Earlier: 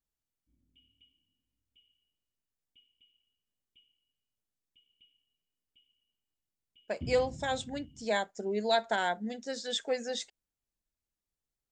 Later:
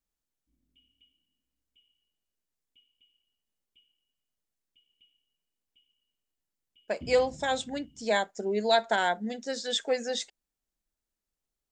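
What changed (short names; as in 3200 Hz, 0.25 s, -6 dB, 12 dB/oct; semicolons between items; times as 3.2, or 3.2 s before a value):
speech +4.0 dB; master: add bell 100 Hz -8.5 dB 0.98 oct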